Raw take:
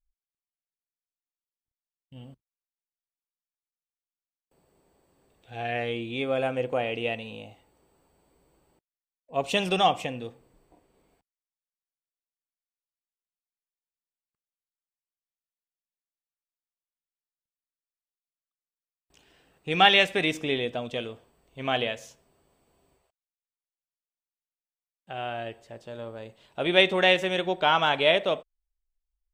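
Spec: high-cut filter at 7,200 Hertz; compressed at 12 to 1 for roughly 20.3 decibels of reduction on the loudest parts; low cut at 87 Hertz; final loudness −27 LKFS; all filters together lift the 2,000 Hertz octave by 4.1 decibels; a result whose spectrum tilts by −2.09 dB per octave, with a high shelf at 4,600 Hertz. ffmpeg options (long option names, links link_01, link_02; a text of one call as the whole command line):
ffmpeg -i in.wav -af "highpass=87,lowpass=7200,equalizer=frequency=2000:width_type=o:gain=4.5,highshelf=frequency=4600:gain=3.5,acompressor=threshold=-32dB:ratio=12,volume=10.5dB" out.wav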